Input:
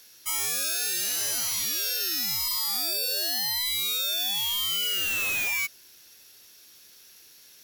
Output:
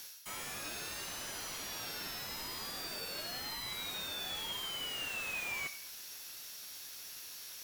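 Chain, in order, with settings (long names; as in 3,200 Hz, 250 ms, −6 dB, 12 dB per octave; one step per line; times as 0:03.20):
high-pass filter 690 Hz 12 dB per octave
high-shelf EQ 6,600 Hz +5 dB
reversed playback
downward compressor 5 to 1, threshold −37 dBFS, peak gain reduction 13.5 dB
reversed playback
convolution reverb RT60 0.60 s, pre-delay 7 ms, DRR 6 dB
slew-rate limiting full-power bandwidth 35 Hz
level +3 dB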